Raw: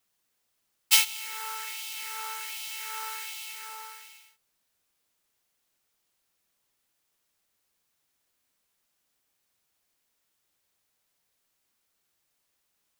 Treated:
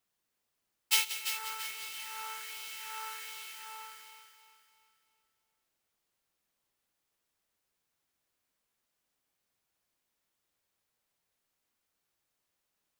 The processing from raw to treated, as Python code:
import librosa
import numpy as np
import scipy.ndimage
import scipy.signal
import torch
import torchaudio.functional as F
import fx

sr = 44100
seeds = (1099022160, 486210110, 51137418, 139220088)

p1 = fx.high_shelf(x, sr, hz=2500.0, db=-4.5)
p2 = p1 + fx.echo_feedback(p1, sr, ms=338, feedback_pct=42, wet_db=-9.5, dry=0)
p3 = fx.echo_crushed(p2, sr, ms=179, feedback_pct=80, bits=7, wet_db=-12)
y = p3 * 10.0 ** (-3.5 / 20.0)